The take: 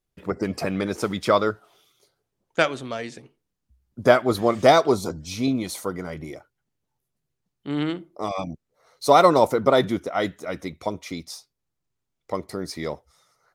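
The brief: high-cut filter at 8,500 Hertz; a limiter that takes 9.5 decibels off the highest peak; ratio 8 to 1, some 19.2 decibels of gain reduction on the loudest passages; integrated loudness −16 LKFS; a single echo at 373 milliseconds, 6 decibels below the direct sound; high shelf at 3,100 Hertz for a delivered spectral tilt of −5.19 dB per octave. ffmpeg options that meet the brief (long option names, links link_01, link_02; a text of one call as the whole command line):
ffmpeg -i in.wav -af "lowpass=8500,highshelf=frequency=3100:gain=-5.5,acompressor=threshold=-31dB:ratio=8,alimiter=level_in=3dB:limit=-24dB:level=0:latency=1,volume=-3dB,aecho=1:1:373:0.501,volume=23dB" out.wav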